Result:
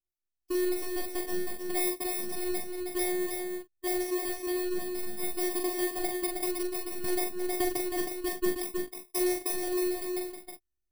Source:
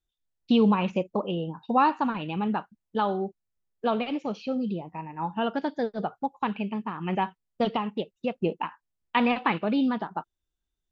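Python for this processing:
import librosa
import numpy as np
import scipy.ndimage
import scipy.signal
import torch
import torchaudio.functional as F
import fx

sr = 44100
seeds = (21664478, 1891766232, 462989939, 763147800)

p1 = fx.bit_reversed(x, sr, seeds[0], block=32)
p2 = fx.peak_eq(p1, sr, hz=160.0, db=14.0, octaves=1.3)
p3 = fx.rider(p2, sr, range_db=5, speed_s=0.5)
p4 = fx.robotise(p3, sr, hz=360.0)
p5 = fx.doubler(p4, sr, ms=42.0, db=-4)
p6 = p5 + fx.echo_single(p5, sr, ms=317, db=-5.0, dry=0)
p7 = fx.band_squash(p6, sr, depth_pct=70, at=(7.04, 7.78))
y = F.gain(torch.from_numpy(p7), -7.0).numpy()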